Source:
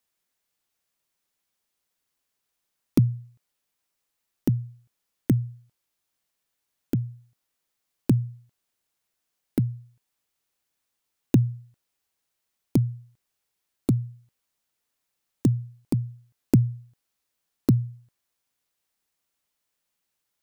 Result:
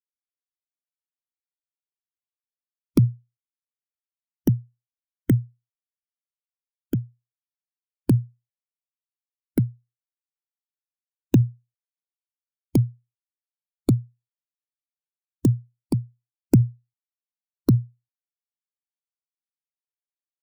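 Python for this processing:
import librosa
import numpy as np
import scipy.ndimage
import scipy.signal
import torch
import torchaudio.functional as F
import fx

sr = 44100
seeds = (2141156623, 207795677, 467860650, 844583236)

p1 = fx.bin_expand(x, sr, power=2.0)
p2 = fx.over_compress(p1, sr, threshold_db=-24.0, ratio=-0.5)
p3 = p1 + (p2 * librosa.db_to_amplitude(-3.0))
y = p3 * librosa.db_to_amplitude(3.0)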